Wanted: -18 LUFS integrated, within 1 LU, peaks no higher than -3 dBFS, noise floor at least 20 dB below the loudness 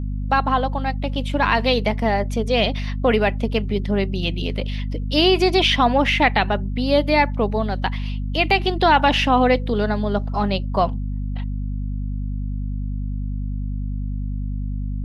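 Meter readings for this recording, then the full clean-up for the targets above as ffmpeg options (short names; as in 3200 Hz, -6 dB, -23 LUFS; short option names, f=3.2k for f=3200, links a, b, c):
hum 50 Hz; harmonics up to 250 Hz; hum level -22 dBFS; loudness -21.0 LUFS; peak -3.5 dBFS; loudness target -18.0 LUFS
-> -af "bandreject=f=50:t=h:w=4,bandreject=f=100:t=h:w=4,bandreject=f=150:t=h:w=4,bandreject=f=200:t=h:w=4,bandreject=f=250:t=h:w=4"
-af "volume=3dB,alimiter=limit=-3dB:level=0:latency=1"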